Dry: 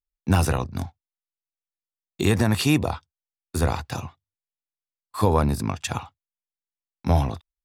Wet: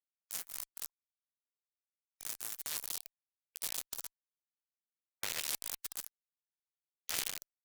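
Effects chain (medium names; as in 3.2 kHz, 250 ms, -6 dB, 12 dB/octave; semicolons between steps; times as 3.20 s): in parallel at -10 dB: hard clipper -24.5 dBFS, distortion -5 dB; on the sum: Schroeder reverb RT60 1.4 s, combs from 33 ms, DRR 10.5 dB; reverse; compression 4:1, threshold -35 dBFS, peak gain reduction 18 dB; reverse; bit crusher 5-bit; LFO high-pass sine 0.52 Hz 920–3100 Hz; peak limiter -32.5 dBFS, peak gain reduction 14.5 dB; spectral gate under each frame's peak -15 dB weak; Chebyshev shaper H 2 -8 dB, 4 -24 dB, 5 -30 dB, 7 -16 dB, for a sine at -33 dBFS; bass shelf 400 Hz -3.5 dB; trim +17 dB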